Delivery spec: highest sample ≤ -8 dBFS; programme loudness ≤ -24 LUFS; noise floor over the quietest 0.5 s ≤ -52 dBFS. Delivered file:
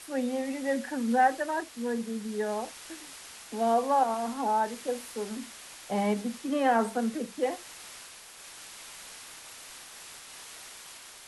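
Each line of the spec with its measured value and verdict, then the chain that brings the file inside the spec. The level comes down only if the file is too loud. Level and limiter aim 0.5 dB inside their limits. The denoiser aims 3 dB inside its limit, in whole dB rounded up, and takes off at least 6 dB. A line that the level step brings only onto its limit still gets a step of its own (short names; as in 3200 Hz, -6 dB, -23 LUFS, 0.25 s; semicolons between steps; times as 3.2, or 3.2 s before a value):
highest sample -13.5 dBFS: OK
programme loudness -30.0 LUFS: OK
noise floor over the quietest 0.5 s -48 dBFS: fail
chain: denoiser 7 dB, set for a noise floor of -48 dBFS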